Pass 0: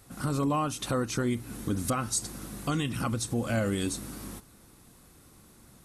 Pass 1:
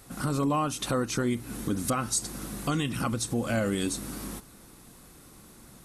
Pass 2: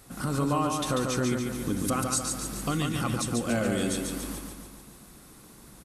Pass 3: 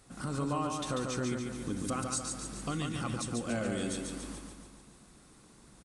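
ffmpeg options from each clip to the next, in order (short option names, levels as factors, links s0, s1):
-filter_complex "[0:a]asplit=2[s0][s1];[s1]acompressor=threshold=0.0126:ratio=6,volume=0.708[s2];[s0][s2]amix=inputs=2:normalize=0,equalizer=f=91:w=2.4:g=-6.5"
-af "aecho=1:1:142|284|426|568|710|852|994|1136:0.631|0.353|0.198|0.111|0.0621|0.0347|0.0195|0.0109,volume=0.891"
-af "aresample=22050,aresample=44100,volume=0.473"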